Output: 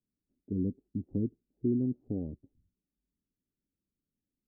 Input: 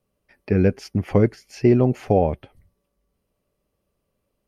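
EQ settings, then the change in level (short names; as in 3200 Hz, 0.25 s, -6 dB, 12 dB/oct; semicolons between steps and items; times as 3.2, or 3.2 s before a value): ladder low-pass 320 Hz, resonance 55%; -7.0 dB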